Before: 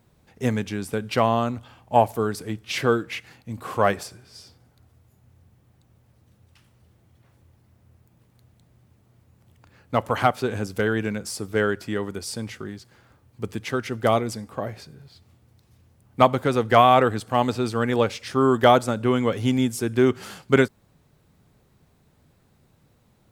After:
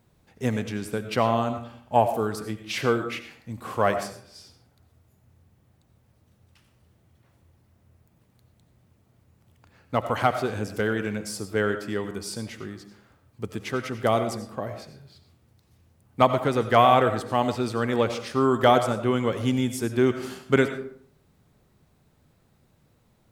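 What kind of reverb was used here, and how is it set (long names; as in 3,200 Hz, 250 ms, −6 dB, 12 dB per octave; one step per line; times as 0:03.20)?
comb and all-pass reverb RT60 0.58 s, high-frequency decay 0.55×, pre-delay 50 ms, DRR 9 dB
level −2.5 dB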